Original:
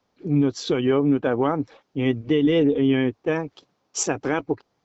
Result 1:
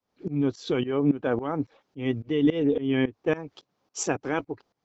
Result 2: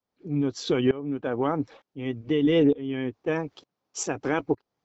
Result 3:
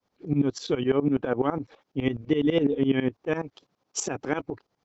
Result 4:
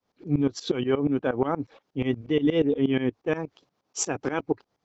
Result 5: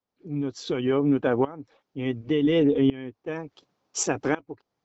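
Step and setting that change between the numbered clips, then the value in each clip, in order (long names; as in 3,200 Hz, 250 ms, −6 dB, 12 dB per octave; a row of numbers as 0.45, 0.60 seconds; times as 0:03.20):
shaped tremolo, speed: 3.6, 1.1, 12, 8.4, 0.69 Hertz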